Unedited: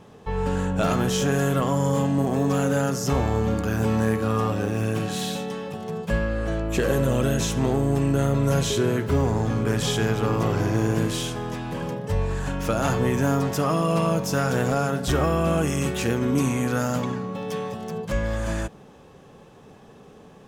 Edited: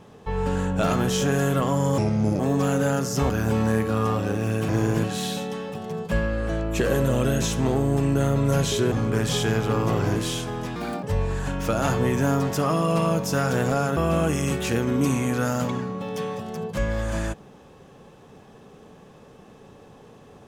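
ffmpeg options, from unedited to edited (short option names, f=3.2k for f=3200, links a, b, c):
-filter_complex "[0:a]asplit=11[a][b][c][d][e][f][g][h][i][j][k];[a]atrim=end=1.984[l];[b]atrim=start=1.98:end=2.3,asetpts=PTS-STARTPTS,asetrate=33957,aresample=44100,atrim=end_sample=18327,asetpts=PTS-STARTPTS[m];[c]atrim=start=2.296:end=3.202[n];[d]atrim=start=3.628:end=5.022[o];[e]atrim=start=10.688:end=11.042[p];[f]atrim=start=5.018:end=8.902[q];[g]atrim=start=9.448:end=10.692[r];[h]atrim=start=11.038:end=11.644[s];[i]atrim=start=11.64:end=12.03,asetpts=PTS-STARTPTS,asetrate=63063,aresample=44100,atrim=end_sample=12027,asetpts=PTS-STARTPTS[t];[j]atrim=start=12.026:end=14.972[u];[k]atrim=start=15.308[v];[l][m]acrossfade=d=0.004:c1=hsin:c2=hsin[w];[w][n]acrossfade=d=0.004:c1=hsin:c2=hsin[x];[x][o]acrossfade=d=0.004:c1=hsin:c2=hsin[y];[y][p]acrossfade=d=0.004:c1=hsin:c2=hsin[z];[z][q]acrossfade=d=0.004:c1=hsin:c2=hsin[aa];[aa][r]acrossfade=d=0.004:c1=hsin:c2=hsin[ab];[ab][s]acrossfade=d=0.004:c1=hsin:c2=hsin[ac];[ac][t]acrossfade=d=0.004:c1=hsin:c2=hsin[ad];[ad][u]acrossfade=d=0.004:c1=hsin:c2=hsin[ae];[ae][v]acrossfade=d=0.004:c1=hsin:c2=hsin"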